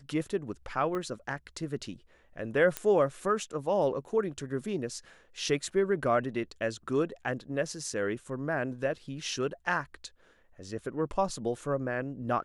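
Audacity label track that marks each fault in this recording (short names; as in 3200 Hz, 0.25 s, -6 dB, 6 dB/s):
0.950000	0.950000	pop -23 dBFS
2.770000	2.770000	pop -14 dBFS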